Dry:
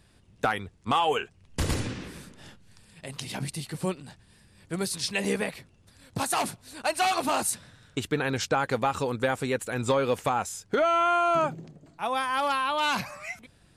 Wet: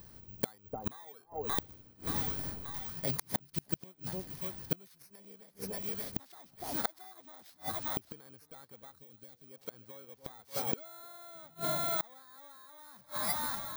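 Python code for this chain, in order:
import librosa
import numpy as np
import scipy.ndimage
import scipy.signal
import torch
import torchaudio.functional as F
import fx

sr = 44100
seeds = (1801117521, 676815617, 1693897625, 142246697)

y = fx.bit_reversed(x, sr, seeds[0], block=16)
y = (np.kron(scipy.signal.resample_poly(y, 1, 2), np.eye(2)[0]) * 2)[:len(y)]
y = fx.echo_split(y, sr, split_hz=830.0, low_ms=294, high_ms=579, feedback_pct=52, wet_db=-16)
y = fx.gate_flip(y, sr, shuts_db=-19.0, range_db=-33)
y = fx.peak_eq(y, sr, hz=980.0, db=-10.5, octaves=2.0, at=(8.95, 9.48))
y = y * 10.0 ** (4.0 / 20.0)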